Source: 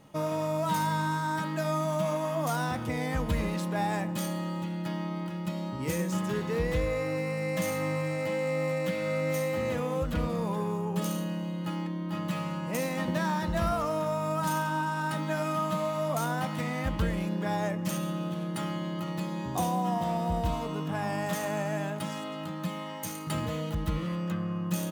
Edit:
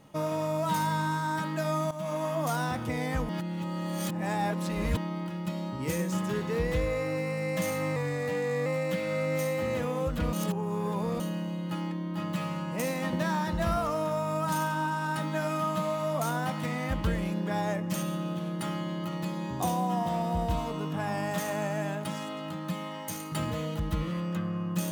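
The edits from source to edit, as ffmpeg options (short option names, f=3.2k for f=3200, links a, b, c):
-filter_complex "[0:a]asplit=8[a][b][c][d][e][f][g][h];[a]atrim=end=1.91,asetpts=PTS-STARTPTS,afade=t=out:st=1.906:d=0.004:c=hsin:silence=0.211349[i];[b]atrim=start=1.91:end=3.292,asetpts=PTS-STARTPTS,afade=t=in:d=0.31:silence=0.211349[j];[c]atrim=start=3.288:end=4.972,asetpts=PTS-STARTPTS,areverse[k];[d]atrim=start=4.968:end=7.964[l];[e]atrim=start=7.96:end=8.61,asetpts=PTS-STARTPTS,asetrate=41013,aresample=44100[m];[f]atrim=start=8.606:end=10.282[n];[g]atrim=start=10.278:end=11.152,asetpts=PTS-STARTPTS,areverse[o];[h]atrim=start=11.148[p];[i][j]concat=n=2:v=0:a=1[q];[q][k]acrossfade=d=0.004:c1=hsin:c2=hsin[r];[r][l]acrossfade=d=0.004:c1=hsin:c2=hsin[s];[s][m]acrossfade=d=0.004:c1=hsin:c2=hsin[t];[t][n]acrossfade=d=0.004:c1=hsin:c2=hsin[u];[u][o]acrossfade=d=0.004:c1=hsin:c2=hsin[v];[v][p]acrossfade=d=0.004:c1=hsin:c2=hsin"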